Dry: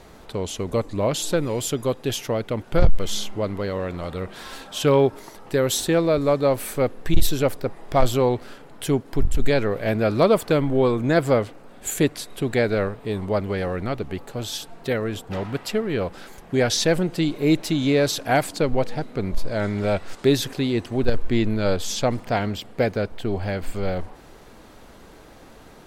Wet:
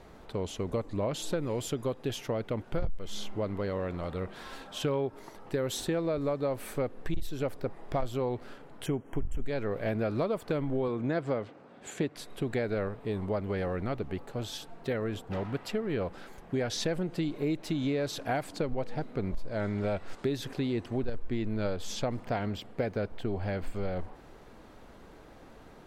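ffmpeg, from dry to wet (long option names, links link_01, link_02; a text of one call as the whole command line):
ffmpeg -i in.wav -filter_complex "[0:a]asettb=1/sr,asplit=3[link_01][link_02][link_03];[link_01]atrim=end=8.864[link_04];[link_02]atrim=start=8.86:end=9.46,asetpts=PTS-STARTPTS,afade=type=in:duration=0.004:curve=qsin,afade=type=out:start_time=0.596:duration=0.004:curve=qsin,asuperstop=centerf=4300:order=20:qfactor=1.9[link_05];[link_03]atrim=start=9.456[link_06];[link_04][link_05]acrossfade=duration=0.004:curve1=hsin:curve2=qsin[link_07];[link_07][link_06]acrossfade=duration=0.004:curve1=qsin:curve2=hsin,asettb=1/sr,asplit=3[link_08][link_09][link_10];[link_08]atrim=end=10.884[link_11];[link_09]atrim=start=10.88:end=12.16,asetpts=PTS-STARTPTS,afade=type=in:duration=0.004:curve=qsin,afade=type=out:start_time=1.276:duration=0.004:curve=qsin,highpass=110,lowpass=6000[link_12];[link_10]atrim=start=12.156[link_13];[link_11][link_12]acrossfade=duration=0.004:curve1=hsin:curve2=qsin[link_14];[link_14][link_13]acrossfade=duration=0.004:curve1=qsin:curve2=hsin,highshelf=frequency=3600:gain=-8.5,acompressor=threshold=-22dB:ratio=6,volume=-5dB" out.wav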